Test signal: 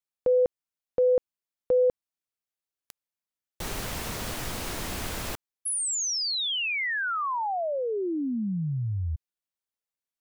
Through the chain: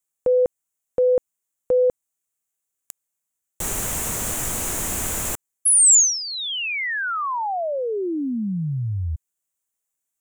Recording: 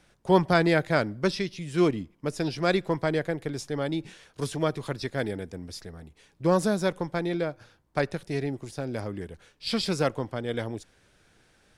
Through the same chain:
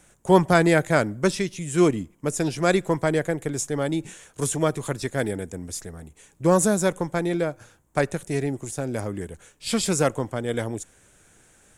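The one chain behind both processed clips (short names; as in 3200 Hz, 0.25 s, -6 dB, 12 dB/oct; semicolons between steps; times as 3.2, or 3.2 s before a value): resonant high shelf 5900 Hz +7 dB, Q 3; gain +4 dB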